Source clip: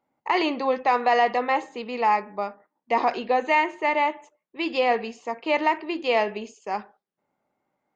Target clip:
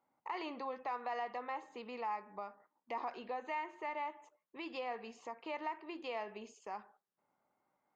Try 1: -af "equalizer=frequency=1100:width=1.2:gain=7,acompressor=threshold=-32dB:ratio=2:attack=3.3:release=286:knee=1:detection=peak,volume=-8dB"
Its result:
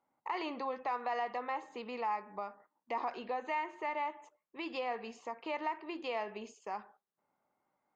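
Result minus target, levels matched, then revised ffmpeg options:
downward compressor: peak gain reduction −4 dB
-af "equalizer=frequency=1100:width=1.2:gain=7,acompressor=threshold=-40dB:ratio=2:attack=3.3:release=286:knee=1:detection=peak,volume=-8dB"

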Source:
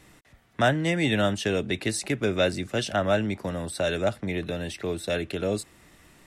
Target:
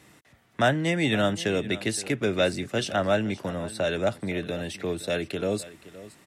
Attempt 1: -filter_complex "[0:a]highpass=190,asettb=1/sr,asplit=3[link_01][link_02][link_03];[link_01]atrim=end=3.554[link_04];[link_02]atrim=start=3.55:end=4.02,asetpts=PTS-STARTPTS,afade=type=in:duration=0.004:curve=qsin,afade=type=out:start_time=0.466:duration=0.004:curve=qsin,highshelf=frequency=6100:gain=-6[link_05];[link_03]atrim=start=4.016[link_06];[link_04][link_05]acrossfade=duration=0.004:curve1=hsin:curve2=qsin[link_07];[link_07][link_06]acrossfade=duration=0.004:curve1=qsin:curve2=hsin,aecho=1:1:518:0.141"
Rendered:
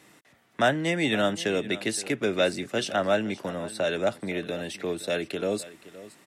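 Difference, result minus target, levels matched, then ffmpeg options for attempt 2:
125 Hz band −5.0 dB
-filter_complex "[0:a]highpass=92,asettb=1/sr,asplit=3[link_01][link_02][link_03];[link_01]atrim=end=3.554[link_04];[link_02]atrim=start=3.55:end=4.02,asetpts=PTS-STARTPTS,afade=type=in:duration=0.004:curve=qsin,afade=type=out:start_time=0.466:duration=0.004:curve=qsin,highshelf=frequency=6100:gain=-6[link_05];[link_03]atrim=start=4.016[link_06];[link_04][link_05]acrossfade=duration=0.004:curve1=hsin:curve2=qsin[link_07];[link_07][link_06]acrossfade=duration=0.004:curve1=qsin:curve2=hsin,aecho=1:1:518:0.141"

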